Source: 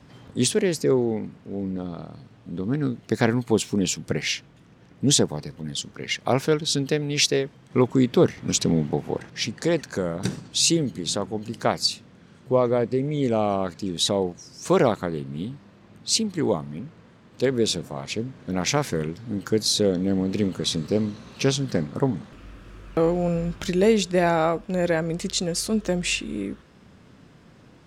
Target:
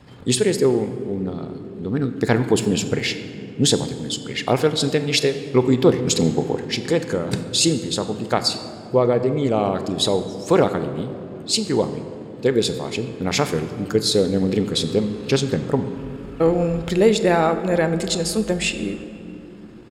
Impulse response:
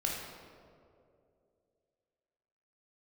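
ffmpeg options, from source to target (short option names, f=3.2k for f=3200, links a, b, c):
-filter_complex "[0:a]bandreject=f=5.9k:w=6.7,atempo=1.4,asplit=2[a][b];[1:a]atrim=start_sample=2205,asetrate=26460,aresample=44100[c];[b][c]afir=irnorm=-1:irlink=0,volume=-14dB[d];[a][d]amix=inputs=2:normalize=0,volume=1.5dB"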